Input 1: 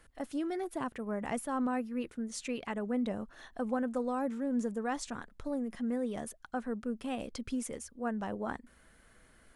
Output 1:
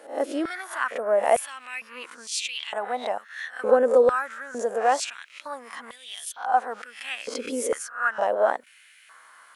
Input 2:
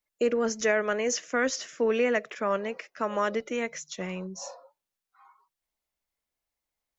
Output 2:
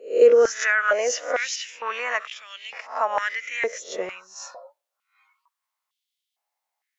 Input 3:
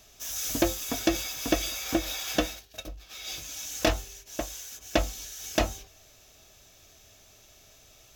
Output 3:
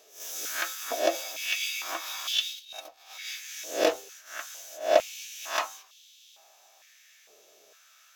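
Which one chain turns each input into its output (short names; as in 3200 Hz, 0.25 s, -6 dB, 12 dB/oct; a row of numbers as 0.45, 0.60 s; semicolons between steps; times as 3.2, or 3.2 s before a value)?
spectral swells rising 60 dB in 0.38 s; stepped high-pass 2.2 Hz 450–3300 Hz; normalise peaks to -6 dBFS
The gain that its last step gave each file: +8.0, +0.5, -4.5 dB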